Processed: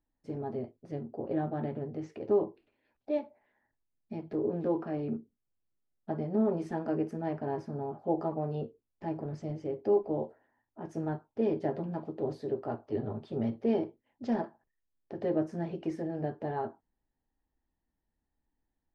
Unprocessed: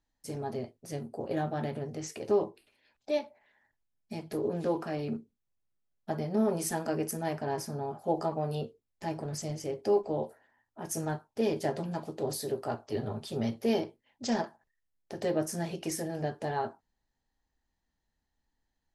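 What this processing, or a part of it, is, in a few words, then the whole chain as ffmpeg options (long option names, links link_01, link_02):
phone in a pocket: -af "lowpass=3400,equalizer=frequency=310:width_type=o:width=0.74:gain=4.5,highshelf=frequency=2000:gain=-12,volume=-1.5dB"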